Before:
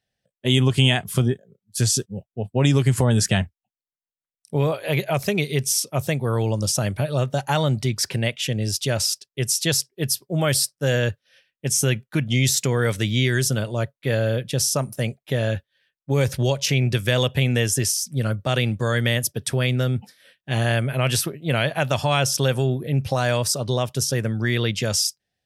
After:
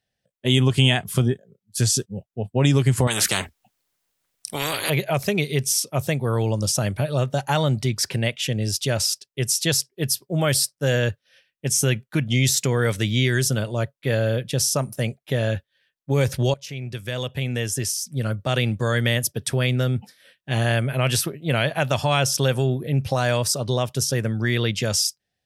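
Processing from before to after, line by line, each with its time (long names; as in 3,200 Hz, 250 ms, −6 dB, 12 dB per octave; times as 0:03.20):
0:03.07–0:04.90: every bin compressed towards the loudest bin 4 to 1
0:16.54–0:18.70: fade in, from −16.5 dB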